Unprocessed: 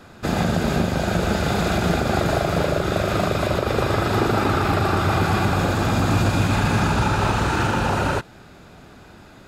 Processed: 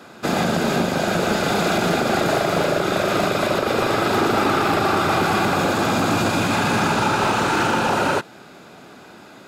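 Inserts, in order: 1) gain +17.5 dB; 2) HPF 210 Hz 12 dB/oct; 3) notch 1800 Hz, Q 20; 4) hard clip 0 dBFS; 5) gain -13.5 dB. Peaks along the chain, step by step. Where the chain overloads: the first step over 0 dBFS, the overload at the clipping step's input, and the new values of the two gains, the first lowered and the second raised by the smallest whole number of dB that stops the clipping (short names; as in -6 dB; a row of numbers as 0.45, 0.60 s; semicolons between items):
+7.0, +9.5, +9.5, 0.0, -13.5 dBFS; step 1, 9.5 dB; step 1 +7.5 dB, step 5 -3.5 dB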